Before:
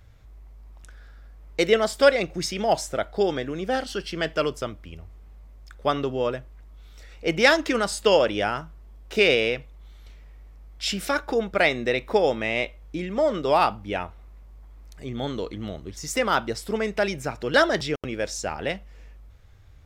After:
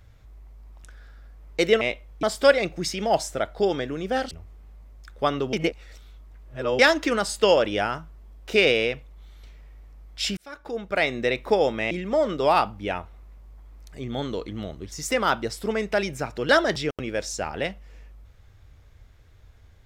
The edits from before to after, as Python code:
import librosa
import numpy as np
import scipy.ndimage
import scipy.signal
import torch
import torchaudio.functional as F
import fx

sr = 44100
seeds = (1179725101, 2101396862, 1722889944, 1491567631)

y = fx.edit(x, sr, fx.cut(start_s=3.89, length_s=1.05),
    fx.reverse_span(start_s=6.16, length_s=1.26),
    fx.fade_in_span(start_s=11.0, length_s=0.87),
    fx.move(start_s=12.54, length_s=0.42, to_s=1.81), tone=tone)